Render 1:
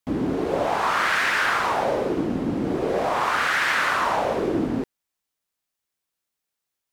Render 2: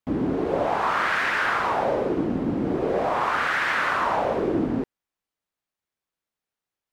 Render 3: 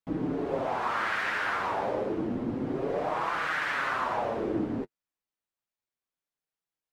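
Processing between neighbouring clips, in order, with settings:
high shelf 3700 Hz -11 dB
flange 0.3 Hz, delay 5.9 ms, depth 4.7 ms, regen -21%; gain -3 dB

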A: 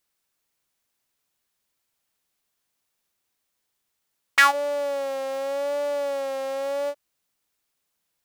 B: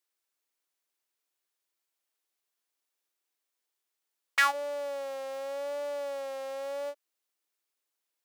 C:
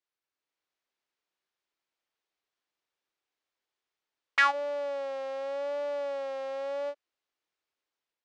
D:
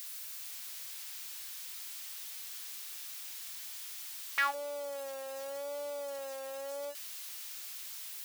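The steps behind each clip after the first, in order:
Chebyshev high-pass 320 Hz, order 3; gain -7.5 dB
AGC gain up to 4.5 dB; air absorption 140 m; gain -2 dB
switching spikes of -28 dBFS; gain -7 dB

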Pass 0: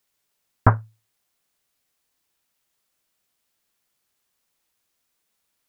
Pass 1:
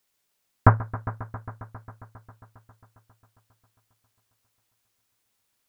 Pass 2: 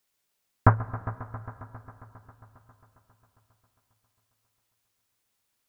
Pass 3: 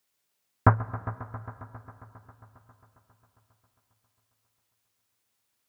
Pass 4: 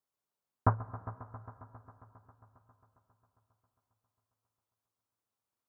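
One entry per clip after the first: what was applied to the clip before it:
multi-head echo 0.135 s, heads all three, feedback 65%, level -20 dB
reverb RT60 4.4 s, pre-delay 98 ms, DRR 19 dB; gain -2.5 dB
HPF 60 Hz
resonant high shelf 1500 Hz -7.5 dB, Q 1.5; gain -8.5 dB

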